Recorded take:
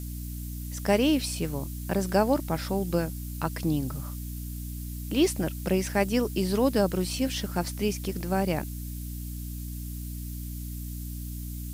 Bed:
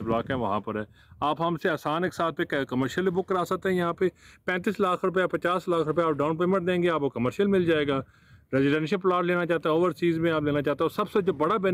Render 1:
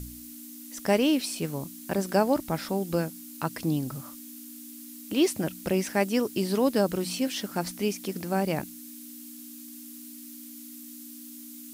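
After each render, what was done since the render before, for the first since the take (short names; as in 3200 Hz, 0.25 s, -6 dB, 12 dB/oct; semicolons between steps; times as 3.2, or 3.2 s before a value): de-hum 60 Hz, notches 3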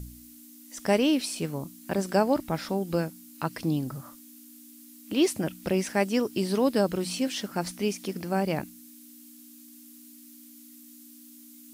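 noise print and reduce 6 dB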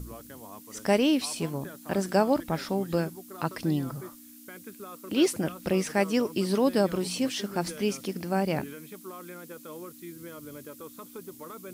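add bed -19 dB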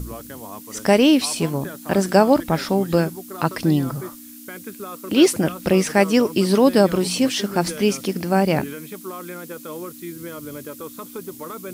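gain +9 dB; limiter -3 dBFS, peak gain reduction 2 dB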